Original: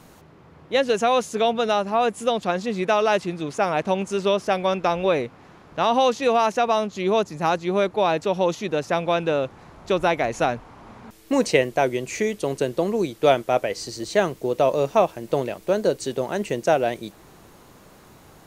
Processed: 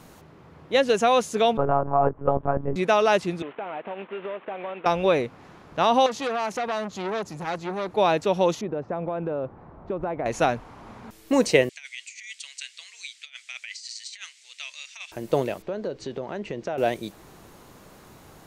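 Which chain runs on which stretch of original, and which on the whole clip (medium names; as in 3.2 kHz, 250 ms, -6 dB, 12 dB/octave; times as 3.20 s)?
1.57–2.76 s: low-pass 1.3 kHz 24 dB/octave + monotone LPC vocoder at 8 kHz 140 Hz
3.42–4.86 s: CVSD coder 16 kbps + high-pass 380 Hz + compression 5:1, threshold -30 dBFS
6.06–7.97 s: compression 3:1, threshold -21 dBFS + transformer saturation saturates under 1.5 kHz
8.61–10.26 s: low-pass 1.1 kHz + compression 10:1, threshold -24 dBFS
11.69–15.12 s: elliptic band-pass 2.1–8.1 kHz, stop band 80 dB + compressor with a negative ratio -38 dBFS, ratio -0.5
15.62–16.78 s: distance through air 170 m + compression 3:1, threshold -29 dBFS
whole clip: none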